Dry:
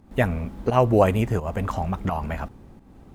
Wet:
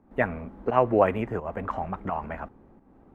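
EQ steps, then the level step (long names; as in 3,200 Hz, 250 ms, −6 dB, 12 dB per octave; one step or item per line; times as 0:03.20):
three-way crossover with the lows and the highs turned down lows −15 dB, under 220 Hz, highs −20 dB, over 2,000 Hz
low-shelf EQ 120 Hz +8.5 dB
dynamic equaliser 2,200 Hz, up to +8 dB, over −40 dBFS, Q 0.79
−3.5 dB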